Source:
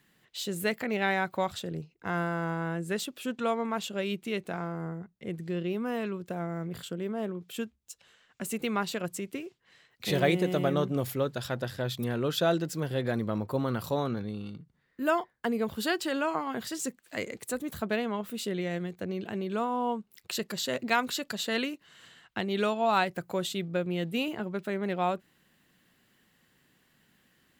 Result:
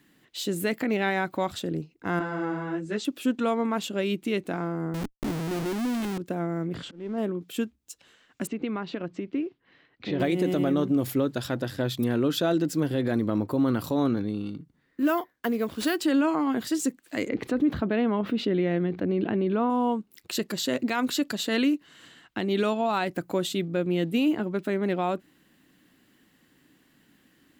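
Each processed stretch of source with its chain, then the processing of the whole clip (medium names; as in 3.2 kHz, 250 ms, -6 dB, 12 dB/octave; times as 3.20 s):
2.19–3.05 s: low-pass 6.9 kHz 24 dB/octave + three-phase chorus
4.94–6.18 s: band-stop 480 Hz, Q 8.1 + Schmitt trigger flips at -43 dBFS
6.74–7.18 s: jump at every zero crossing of -42.5 dBFS + slow attack 349 ms + Gaussian low-pass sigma 1.5 samples
8.47–10.20 s: block-companded coder 7-bit + Gaussian low-pass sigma 2.3 samples + compression 2:1, threshold -36 dBFS
15.00–16.00 s: bass shelf 330 Hz -6.5 dB + band-stop 860 Hz, Q 9.1 + sample-rate reducer 15 kHz
17.29–19.70 s: distance through air 300 m + level flattener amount 50%
whole clip: peaking EQ 290 Hz +12 dB 0.5 oct; peak limiter -18.5 dBFS; trim +2.5 dB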